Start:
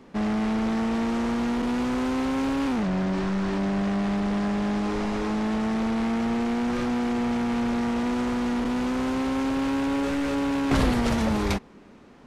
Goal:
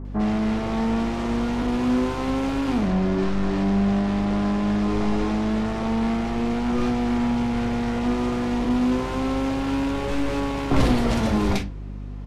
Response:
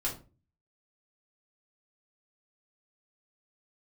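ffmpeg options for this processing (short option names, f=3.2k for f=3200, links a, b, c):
-filter_complex "[0:a]acrossover=split=1600[a][b];[b]adelay=50[c];[a][c]amix=inputs=2:normalize=0,asplit=2[d][e];[1:a]atrim=start_sample=2205,lowpass=6k[f];[e][f]afir=irnorm=-1:irlink=0,volume=-9dB[g];[d][g]amix=inputs=2:normalize=0,aeval=exprs='val(0)+0.0251*(sin(2*PI*50*n/s)+sin(2*PI*2*50*n/s)/2+sin(2*PI*3*50*n/s)/3+sin(2*PI*4*50*n/s)/4+sin(2*PI*5*50*n/s)/5)':c=same"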